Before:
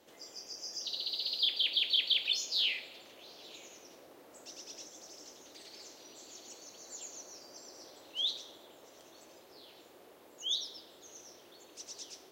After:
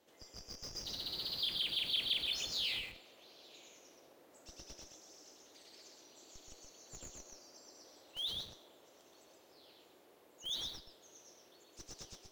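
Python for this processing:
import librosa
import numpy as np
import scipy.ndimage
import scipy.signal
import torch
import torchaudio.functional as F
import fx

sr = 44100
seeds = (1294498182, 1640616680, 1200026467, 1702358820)

p1 = fx.schmitt(x, sr, flips_db=-38.5)
p2 = x + F.gain(torch.from_numpy(p1), -5.0).numpy()
p3 = p2 + 10.0 ** (-4.0 / 20.0) * np.pad(p2, (int(125 * sr / 1000.0), 0))[:len(p2)]
y = F.gain(torch.from_numpy(p3), -8.0).numpy()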